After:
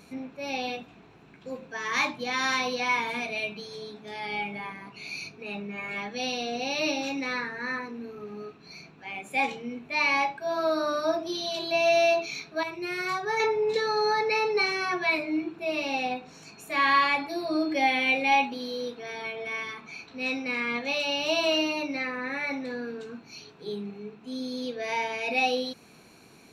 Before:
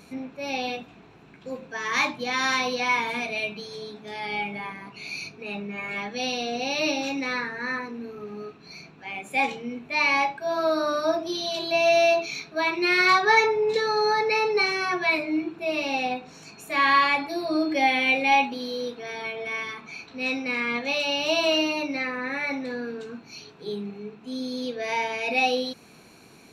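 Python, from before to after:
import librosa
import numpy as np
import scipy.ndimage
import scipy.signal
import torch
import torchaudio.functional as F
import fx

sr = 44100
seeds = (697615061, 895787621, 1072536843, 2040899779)

y = fx.graphic_eq(x, sr, hz=(125, 250, 1000, 2000, 4000), db=(7, -12, -7, -7, -10), at=(12.63, 13.4))
y = F.gain(torch.from_numpy(y), -2.5).numpy()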